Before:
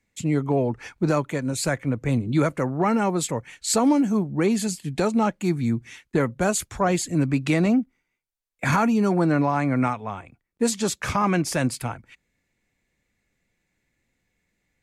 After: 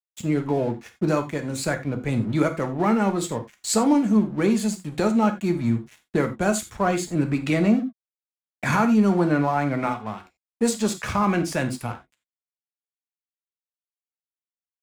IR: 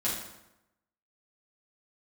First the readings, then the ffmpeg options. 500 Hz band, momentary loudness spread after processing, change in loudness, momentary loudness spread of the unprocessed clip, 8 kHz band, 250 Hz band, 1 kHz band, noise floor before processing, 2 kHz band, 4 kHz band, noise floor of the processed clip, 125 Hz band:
0.0 dB, 10 LU, 0.0 dB, 8 LU, −2.5 dB, +1.0 dB, 0.0 dB, −77 dBFS, 0.0 dB, −1.5 dB, below −85 dBFS, −1.5 dB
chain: -filter_complex "[0:a]aeval=exprs='sgn(val(0))*max(abs(val(0))-0.00944,0)':channel_layout=same,asplit=2[link_01][link_02];[1:a]atrim=start_sample=2205,atrim=end_sample=4410[link_03];[link_02][link_03]afir=irnorm=-1:irlink=0,volume=-10.5dB[link_04];[link_01][link_04]amix=inputs=2:normalize=0,adynamicequalizer=threshold=0.00794:dfrequency=4300:dqfactor=0.7:tfrequency=4300:tqfactor=0.7:attack=5:release=100:ratio=0.375:range=2:mode=cutabove:tftype=highshelf,volume=-2dB"

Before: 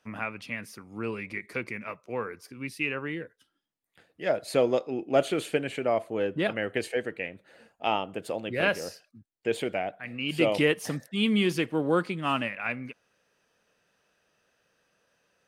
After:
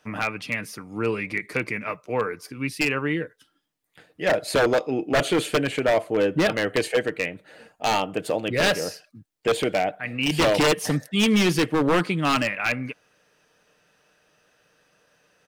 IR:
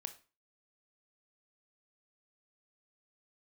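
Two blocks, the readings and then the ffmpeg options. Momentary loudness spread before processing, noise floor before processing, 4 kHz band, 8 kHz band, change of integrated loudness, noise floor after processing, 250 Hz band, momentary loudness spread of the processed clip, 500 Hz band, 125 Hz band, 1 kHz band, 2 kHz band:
12 LU, −76 dBFS, +7.5 dB, +11.0 dB, +5.5 dB, −68 dBFS, +5.5 dB, 9 LU, +5.0 dB, +7.0 dB, +6.5 dB, +6.5 dB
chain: -af "aecho=1:1:6.6:0.3,aeval=exprs='0.0891*(abs(mod(val(0)/0.0891+3,4)-2)-1)':channel_layout=same,volume=7.5dB"

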